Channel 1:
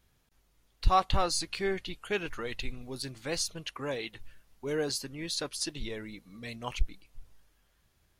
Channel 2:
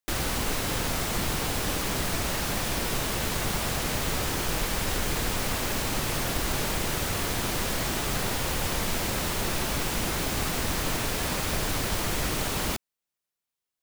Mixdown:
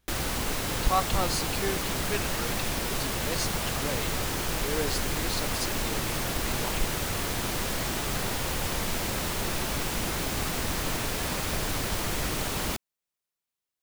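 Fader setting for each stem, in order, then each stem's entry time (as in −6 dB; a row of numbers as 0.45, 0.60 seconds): −1.0, −1.5 decibels; 0.00, 0.00 seconds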